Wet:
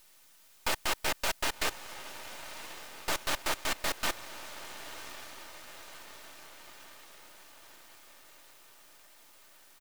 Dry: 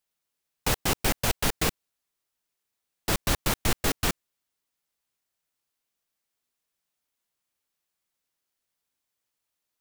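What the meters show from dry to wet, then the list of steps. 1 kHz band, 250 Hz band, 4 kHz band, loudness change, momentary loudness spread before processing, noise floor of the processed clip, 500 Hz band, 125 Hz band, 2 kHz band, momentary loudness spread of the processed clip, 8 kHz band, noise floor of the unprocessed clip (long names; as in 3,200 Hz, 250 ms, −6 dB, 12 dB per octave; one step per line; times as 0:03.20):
−2.5 dB, −12.5 dB, −3.0 dB, −8.0 dB, 4 LU, −60 dBFS, −6.0 dB, −18.5 dB, −1.5 dB, 22 LU, −5.5 dB, −84 dBFS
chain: high-shelf EQ 6,500 Hz −10.5 dB
bit-depth reduction 10 bits, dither triangular
high-pass filter 590 Hz 12 dB per octave
comb filter 3.3 ms, depth 38%
feedback delay with all-pass diffusion 1,103 ms, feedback 60%, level −12 dB
half-wave rectification
level +3 dB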